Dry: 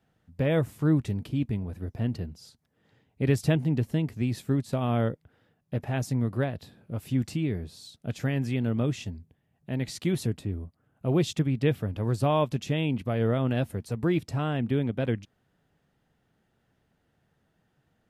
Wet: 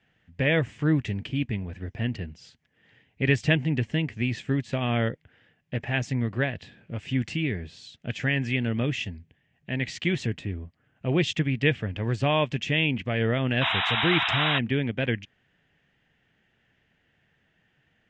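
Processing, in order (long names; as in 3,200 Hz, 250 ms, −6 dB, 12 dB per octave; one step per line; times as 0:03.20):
Butterworth low-pass 7,500 Hz 48 dB per octave
flat-topped bell 2,300 Hz +12 dB 1.2 octaves
sound drawn into the spectrogram noise, 0:13.61–0:14.59, 640–3,900 Hz −26 dBFS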